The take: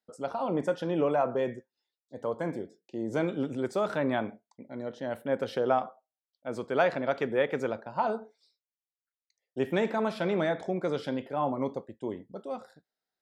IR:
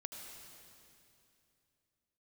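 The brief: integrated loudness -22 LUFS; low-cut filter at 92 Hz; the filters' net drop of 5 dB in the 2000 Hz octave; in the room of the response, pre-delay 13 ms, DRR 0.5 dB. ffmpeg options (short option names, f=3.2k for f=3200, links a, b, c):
-filter_complex "[0:a]highpass=92,equalizer=f=2k:t=o:g=-7,asplit=2[a][b];[1:a]atrim=start_sample=2205,adelay=13[c];[b][c]afir=irnorm=-1:irlink=0,volume=2dB[d];[a][d]amix=inputs=2:normalize=0,volume=7dB"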